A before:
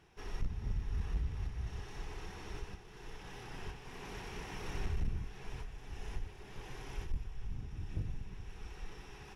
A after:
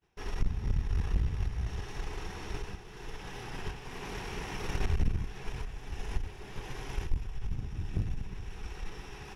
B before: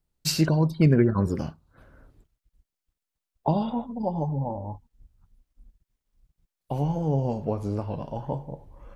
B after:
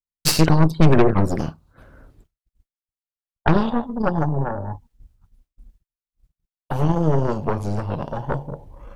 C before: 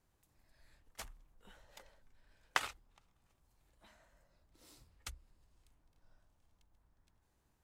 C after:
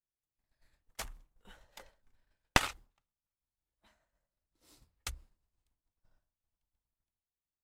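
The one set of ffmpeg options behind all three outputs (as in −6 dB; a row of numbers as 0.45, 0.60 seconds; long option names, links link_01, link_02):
-af "aeval=exprs='0.422*(cos(1*acos(clip(val(0)/0.422,-1,1)))-cos(1*PI/2))+0.168*(cos(4*acos(clip(val(0)/0.422,-1,1)))-cos(4*PI/2))+0.0299*(cos(5*acos(clip(val(0)/0.422,-1,1)))-cos(5*PI/2))+0.00944*(cos(7*acos(clip(val(0)/0.422,-1,1)))-cos(7*PI/2))+0.0376*(cos(8*acos(clip(val(0)/0.422,-1,1)))-cos(8*PI/2))':channel_layout=same,agate=range=-33dB:threshold=-53dB:ratio=3:detection=peak,asoftclip=type=tanh:threshold=-5.5dB,volume=4.5dB"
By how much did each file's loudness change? +6.5, +5.5, +7.5 LU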